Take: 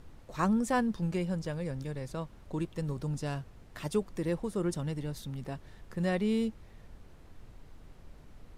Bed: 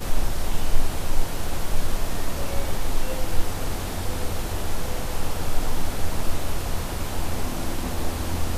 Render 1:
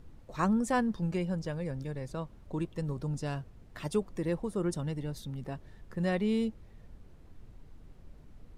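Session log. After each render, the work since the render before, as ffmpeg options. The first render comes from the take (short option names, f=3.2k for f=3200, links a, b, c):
-af "afftdn=nr=6:nf=-55"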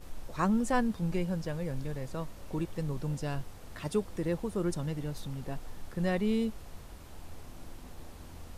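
-filter_complex "[1:a]volume=-21.5dB[a];[0:a][a]amix=inputs=2:normalize=0"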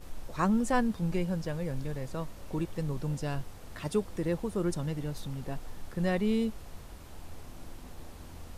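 -af "volume=1dB"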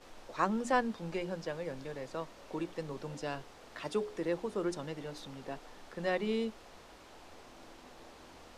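-filter_complex "[0:a]acrossover=split=260 7000:gain=0.141 1 0.178[a][b][c];[a][b][c]amix=inputs=3:normalize=0,bandreject=f=60:t=h:w=6,bandreject=f=120:t=h:w=6,bandreject=f=180:t=h:w=6,bandreject=f=240:t=h:w=6,bandreject=f=300:t=h:w=6,bandreject=f=360:t=h:w=6,bandreject=f=420:t=h:w=6"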